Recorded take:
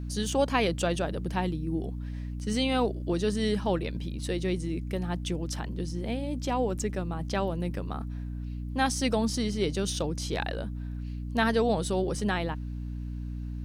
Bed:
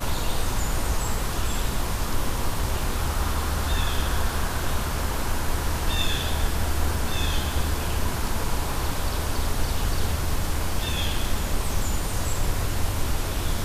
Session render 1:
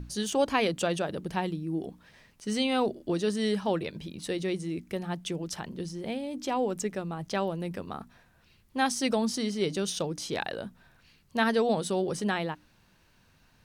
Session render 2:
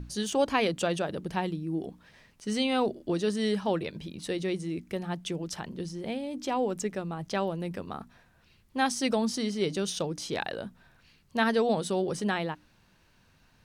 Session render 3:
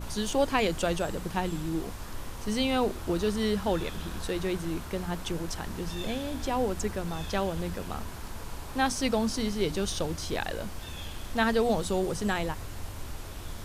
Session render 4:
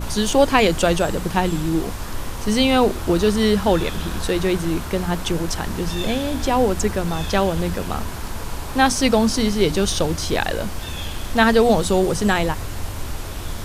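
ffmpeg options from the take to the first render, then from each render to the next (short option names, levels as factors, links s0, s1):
-af "bandreject=f=60:t=h:w=6,bandreject=f=120:t=h:w=6,bandreject=f=180:t=h:w=6,bandreject=f=240:t=h:w=6,bandreject=f=300:t=h:w=6"
-af "highshelf=f=11000:g=-4.5"
-filter_complex "[1:a]volume=0.211[s0];[0:a][s0]amix=inputs=2:normalize=0"
-af "volume=3.35"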